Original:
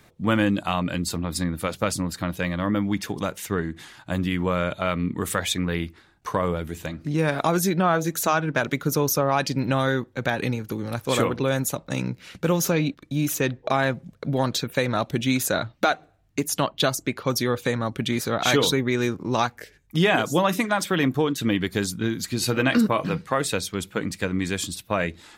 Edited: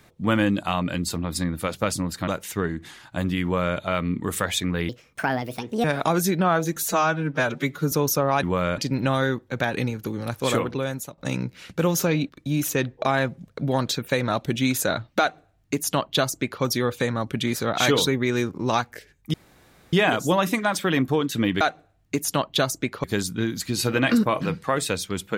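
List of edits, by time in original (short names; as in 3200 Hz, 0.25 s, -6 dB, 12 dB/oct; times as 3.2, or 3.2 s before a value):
2.28–3.22 cut
4.37–4.72 copy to 9.43
5.83–7.23 speed 147%
8.15–8.92 stretch 1.5×
10.9–11.83 fade out equal-power, to -14.5 dB
15.85–17.28 copy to 21.67
19.99 insert room tone 0.59 s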